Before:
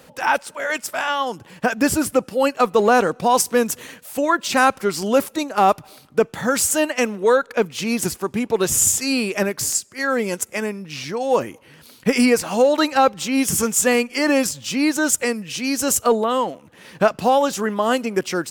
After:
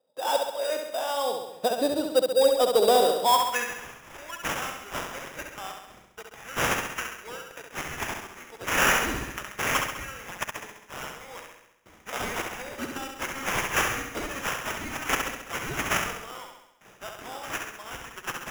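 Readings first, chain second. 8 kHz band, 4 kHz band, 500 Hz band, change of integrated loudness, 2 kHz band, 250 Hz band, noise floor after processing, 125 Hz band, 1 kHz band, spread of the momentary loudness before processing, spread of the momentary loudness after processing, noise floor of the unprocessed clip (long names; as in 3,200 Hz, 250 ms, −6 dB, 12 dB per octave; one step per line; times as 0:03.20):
−12.5 dB, −4.0 dB, −8.5 dB, −7.5 dB, −5.5 dB, −16.5 dB, −55 dBFS, −8.0 dB, −8.0 dB, 8 LU, 19 LU, −49 dBFS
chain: noise gate with hold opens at −35 dBFS
band-pass filter sweep 560 Hz → 5,800 Hz, 0:03.04–0:04.07
sample-rate reduction 4,300 Hz, jitter 0%
soft clipping −12 dBFS, distortion −20 dB
flutter between parallel walls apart 11.5 metres, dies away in 0.84 s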